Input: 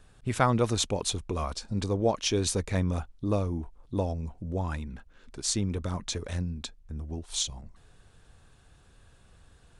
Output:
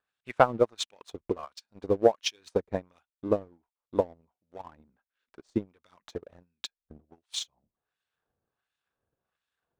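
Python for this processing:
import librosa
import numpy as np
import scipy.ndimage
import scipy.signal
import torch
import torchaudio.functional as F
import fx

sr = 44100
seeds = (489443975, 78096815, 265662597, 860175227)

y = fx.filter_lfo_bandpass(x, sr, shape='sine', hz=1.4, low_hz=390.0, high_hz=2900.0, q=0.85)
y = fx.transient(y, sr, attack_db=10, sustain_db=-4)
y = fx.leveller(y, sr, passes=1)
y = fx.upward_expand(y, sr, threshold_db=-40.0, expansion=1.5)
y = F.gain(torch.from_numpy(y), -2.5).numpy()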